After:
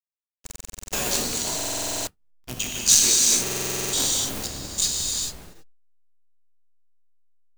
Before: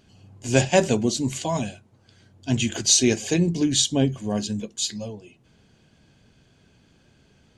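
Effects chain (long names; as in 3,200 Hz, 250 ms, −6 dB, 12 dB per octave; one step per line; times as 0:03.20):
sub-harmonics by changed cycles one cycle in 3, muted
in parallel at −1 dB: downward compressor 10 to 1, threshold −34 dBFS, peak gain reduction 21 dB
on the sum: spectral tilt +3 dB per octave
on a send: echo machine with several playback heads 111 ms, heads first and third, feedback 45%, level −16.5 dB
on the sum: slack as between gear wheels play −19 dBFS
speech leveller within 4 dB 2 s
high-shelf EQ 5,100 Hz +10 dB
reverb whose tail is shaped and stops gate 460 ms flat, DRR −3 dB
noise gate −31 dBFS, range −13 dB
buffer that repeats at 0:00.42/0:01.56/0:03.42, samples 2,048, times 10
level −12.5 dB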